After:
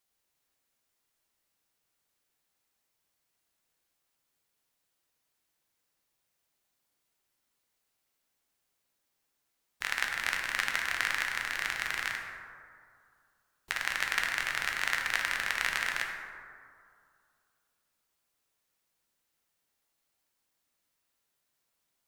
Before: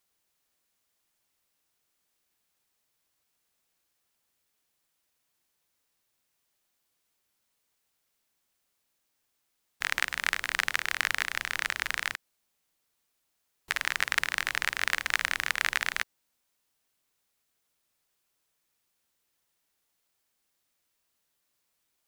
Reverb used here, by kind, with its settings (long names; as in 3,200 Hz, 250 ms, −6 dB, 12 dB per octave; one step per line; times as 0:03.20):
dense smooth reverb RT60 2.3 s, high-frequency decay 0.35×, DRR 1 dB
level −4 dB